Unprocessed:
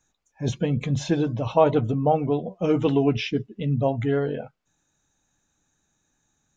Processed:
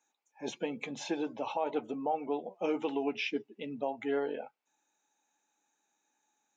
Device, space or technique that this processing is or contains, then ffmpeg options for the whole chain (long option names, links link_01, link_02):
laptop speaker: -af "highpass=frequency=270:width=0.5412,highpass=frequency=270:width=1.3066,equalizer=frequency=850:width_type=o:width=0.23:gain=12,equalizer=frequency=2400:width_type=o:width=0.42:gain=6.5,alimiter=limit=-14.5dB:level=0:latency=1:release=226,volume=-7.5dB"